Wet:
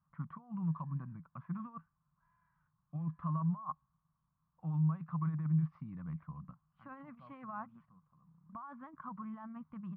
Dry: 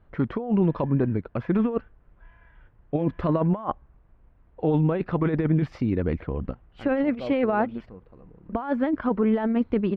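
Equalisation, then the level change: double band-pass 420 Hz, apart 2.8 oct; -6.5 dB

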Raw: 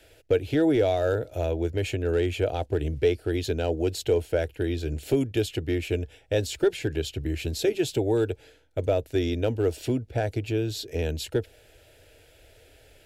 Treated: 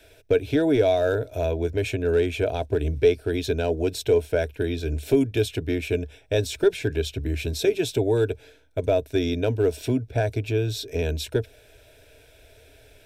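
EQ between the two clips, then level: ripple EQ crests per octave 1.6, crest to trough 7 dB; +1.5 dB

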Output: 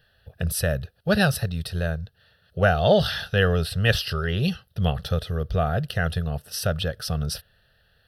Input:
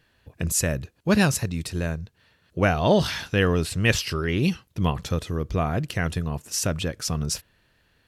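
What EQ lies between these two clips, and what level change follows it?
fixed phaser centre 1500 Hz, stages 8; +3.5 dB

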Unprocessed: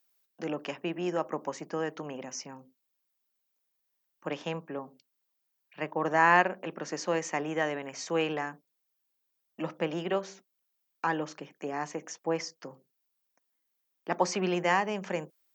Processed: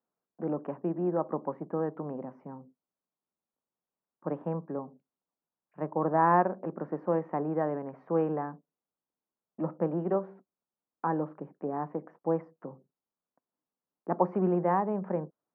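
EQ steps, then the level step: LPF 1200 Hz 24 dB/oct; bell 140 Hz +5 dB 2.5 oct; 0.0 dB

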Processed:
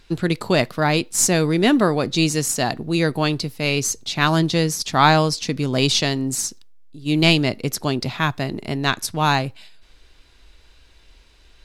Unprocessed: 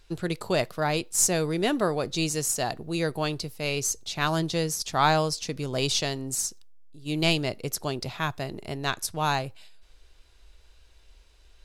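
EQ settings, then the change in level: ten-band EQ 125 Hz +4 dB, 250 Hz +9 dB, 1000 Hz +3 dB, 2000 Hz +5 dB, 4000 Hz +4 dB; +3.0 dB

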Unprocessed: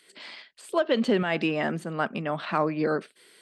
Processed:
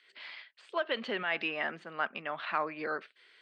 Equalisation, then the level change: band-pass 2200 Hz, Q 0.78; air absorption 120 m; 0.0 dB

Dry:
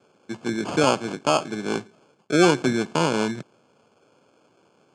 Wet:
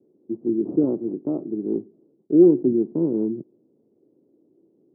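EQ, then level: ladder low-pass 380 Hz, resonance 60%; bell 69 Hz -8 dB 1.8 oct; +8.0 dB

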